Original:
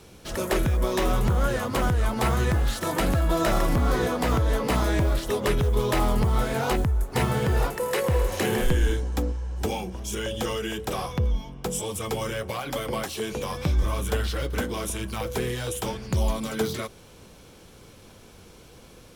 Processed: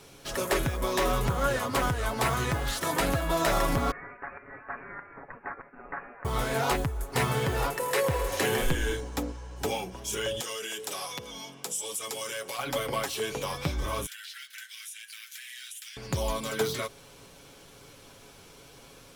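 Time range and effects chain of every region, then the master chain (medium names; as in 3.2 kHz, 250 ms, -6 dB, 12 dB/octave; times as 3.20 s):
3.91–6.25 s: steep high-pass 2.1 kHz + frequency inversion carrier 3.7 kHz
10.40–12.59 s: high-pass 220 Hz + peaking EQ 8.1 kHz +11.5 dB 2.5 oct + compression 3:1, threshold -34 dBFS
14.06–15.97 s: steep high-pass 1.6 kHz 48 dB/octave + compression 4:1, threshold -41 dBFS
whole clip: bass shelf 380 Hz -7 dB; comb 7.2 ms, depth 46%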